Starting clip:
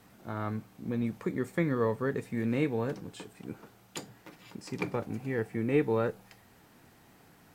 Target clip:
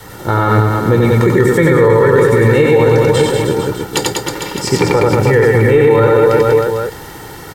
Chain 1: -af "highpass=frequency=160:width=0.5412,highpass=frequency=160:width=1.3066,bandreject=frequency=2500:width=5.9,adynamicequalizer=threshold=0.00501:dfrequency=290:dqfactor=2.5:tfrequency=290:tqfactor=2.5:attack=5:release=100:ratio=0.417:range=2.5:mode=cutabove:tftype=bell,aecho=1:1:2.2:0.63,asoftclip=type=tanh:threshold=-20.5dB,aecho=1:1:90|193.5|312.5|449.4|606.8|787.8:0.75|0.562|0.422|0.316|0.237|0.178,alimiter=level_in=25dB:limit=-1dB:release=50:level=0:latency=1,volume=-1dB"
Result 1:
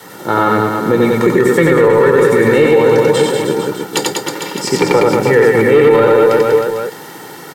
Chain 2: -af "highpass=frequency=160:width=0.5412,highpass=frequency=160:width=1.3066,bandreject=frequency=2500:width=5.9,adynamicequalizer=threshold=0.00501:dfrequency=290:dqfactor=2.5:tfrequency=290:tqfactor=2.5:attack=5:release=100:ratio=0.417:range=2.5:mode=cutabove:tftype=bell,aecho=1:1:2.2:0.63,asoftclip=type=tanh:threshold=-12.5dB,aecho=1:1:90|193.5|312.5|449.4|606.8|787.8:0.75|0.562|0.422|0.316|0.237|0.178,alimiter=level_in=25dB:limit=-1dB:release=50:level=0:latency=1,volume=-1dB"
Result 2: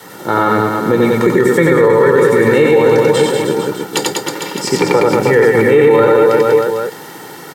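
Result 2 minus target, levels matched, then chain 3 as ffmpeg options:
125 Hz band −8.0 dB
-af "bandreject=frequency=2500:width=5.9,adynamicequalizer=threshold=0.00501:dfrequency=290:dqfactor=2.5:tfrequency=290:tqfactor=2.5:attack=5:release=100:ratio=0.417:range=2.5:mode=cutabove:tftype=bell,aecho=1:1:2.2:0.63,asoftclip=type=tanh:threshold=-12.5dB,aecho=1:1:90|193.5|312.5|449.4|606.8|787.8:0.75|0.562|0.422|0.316|0.237|0.178,alimiter=level_in=25dB:limit=-1dB:release=50:level=0:latency=1,volume=-1dB"

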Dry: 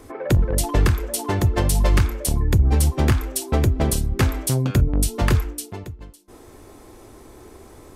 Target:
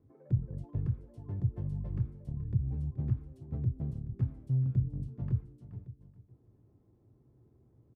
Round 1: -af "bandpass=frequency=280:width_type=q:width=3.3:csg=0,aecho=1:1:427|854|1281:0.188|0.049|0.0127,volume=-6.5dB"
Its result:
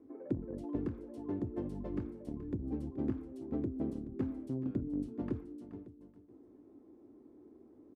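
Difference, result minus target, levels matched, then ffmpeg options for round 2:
250 Hz band +10.0 dB
-af "bandpass=frequency=130:width_type=q:width=3.3:csg=0,aecho=1:1:427|854|1281:0.188|0.049|0.0127,volume=-6.5dB"

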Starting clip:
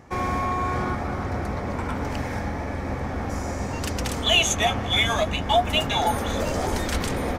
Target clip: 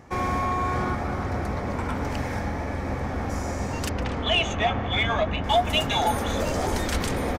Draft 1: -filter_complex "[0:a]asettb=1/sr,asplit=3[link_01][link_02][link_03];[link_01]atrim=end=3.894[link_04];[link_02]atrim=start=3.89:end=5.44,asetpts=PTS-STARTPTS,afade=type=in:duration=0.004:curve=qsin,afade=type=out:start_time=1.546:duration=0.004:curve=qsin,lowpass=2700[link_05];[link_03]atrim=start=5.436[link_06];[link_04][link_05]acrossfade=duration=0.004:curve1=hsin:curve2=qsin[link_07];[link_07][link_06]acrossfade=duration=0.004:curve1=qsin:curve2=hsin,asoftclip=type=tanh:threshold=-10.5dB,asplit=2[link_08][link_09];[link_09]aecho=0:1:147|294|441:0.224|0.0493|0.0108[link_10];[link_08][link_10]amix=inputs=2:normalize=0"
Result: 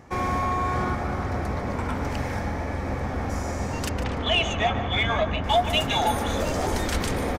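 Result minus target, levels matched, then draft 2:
echo-to-direct +10.5 dB
-filter_complex "[0:a]asettb=1/sr,asplit=3[link_01][link_02][link_03];[link_01]atrim=end=3.894[link_04];[link_02]atrim=start=3.89:end=5.44,asetpts=PTS-STARTPTS,afade=type=in:duration=0.004:curve=qsin,afade=type=out:start_time=1.546:duration=0.004:curve=qsin,lowpass=2700[link_05];[link_03]atrim=start=5.436[link_06];[link_04][link_05]acrossfade=duration=0.004:curve1=hsin:curve2=qsin[link_07];[link_07][link_06]acrossfade=duration=0.004:curve1=qsin:curve2=hsin,asoftclip=type=tanh:threshold=-10.5dB,asplit=2[link_08][link_09];[link_09]aecho=0:1:147|294:0.0668|0.0147[link_10];[link_08][link_10]amix=inputs=2:normalize=0"

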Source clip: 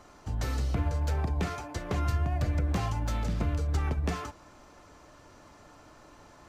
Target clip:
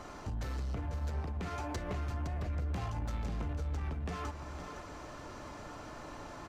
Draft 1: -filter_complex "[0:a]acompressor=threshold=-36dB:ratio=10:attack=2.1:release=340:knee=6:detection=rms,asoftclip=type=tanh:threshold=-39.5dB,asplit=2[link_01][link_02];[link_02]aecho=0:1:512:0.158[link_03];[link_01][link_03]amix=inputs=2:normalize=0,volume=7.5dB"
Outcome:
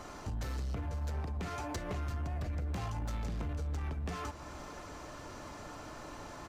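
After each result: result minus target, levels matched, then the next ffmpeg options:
echo-to-direct −7 dB; 8,000 Hz band +3.0 dB
-filter_complex "[0:a]acompressor=threshold=-36dB:ratio=10:attack=2.1:release=340:knee=6:detection=rms,asoftclip=type=tanh:threshold=-39.5dB,asplit=2[link_01][link_02];[link_02]aecho=0:1:512:0.355[link_03];[link_01][link_03]amix=inputs=2:normalize=0,volume=7.5dB"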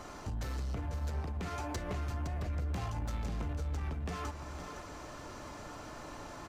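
8,000 Hz band +3.0 dB
-filter_complex "[0:a]acompressor=threshold=-36dB:ratio=10:attack=2.1:release=340:knee=6:detection=rms,highshelf=frequency=5800:gain=-6,asoftclip=type=tanh:threshold=-39.5dB,asplit=2[link_01][link_02];[link_02]aecho=0:1:512:0.355[link_03];[link_01][link_03]amix=inputs=2:normalize=0,volume=7.5dB"

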